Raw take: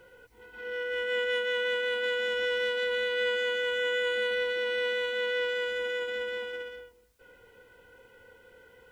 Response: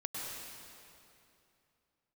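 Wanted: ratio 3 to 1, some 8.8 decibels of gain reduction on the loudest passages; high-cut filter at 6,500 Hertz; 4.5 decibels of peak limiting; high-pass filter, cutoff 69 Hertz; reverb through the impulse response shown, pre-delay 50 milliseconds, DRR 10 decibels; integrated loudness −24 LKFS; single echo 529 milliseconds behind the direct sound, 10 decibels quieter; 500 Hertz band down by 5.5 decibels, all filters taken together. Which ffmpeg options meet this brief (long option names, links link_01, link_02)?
-filter_complex "[0:a]highpass=69,lowpass=6500,equalizer=frequency=500:width_type=o:gain=-5.5,acompressor=threshold=-40dB:ratio=3,alimiter=level_in=11.5dB:limit=-24dB:level=0:latency=1,volume=-11.5dB,aecho=1:1:529:0.316,asplit=2[link_01][link_02];[1:a]atrim=start_sample=2205,adelay=50[link_03];[link_02][link_03]afir=irnorm=-1:irlink=0,volume=-12dB[link_04];[link_01][link_04]amix=inputs=2:normalize=0,volume=18dB"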